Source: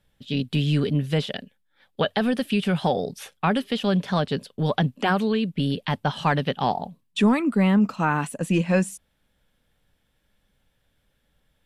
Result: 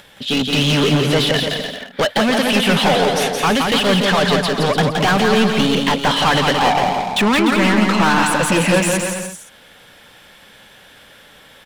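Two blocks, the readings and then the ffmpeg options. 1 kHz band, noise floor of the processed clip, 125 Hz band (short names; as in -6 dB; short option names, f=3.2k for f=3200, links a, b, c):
+10.0 dB, -46 dBFS, +4.0 dB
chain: -filter_complex "[0:a]asplit=2[a][b];[b]highpass=f=720:p=1,volume=29dB,asoftclip=type=tanh:threshold=-9dB[c];[a][c]amix=inputs=2:normalize=0,lowpass=f=5.2k:p=1,volume=-6dB,acompressor=mode=upward:threshold=-39dB:ratio=2.5,aecho=1:1:170|297.5|393.1|464.8|518.6:0.631|0.398|0.251|0.158|0.1"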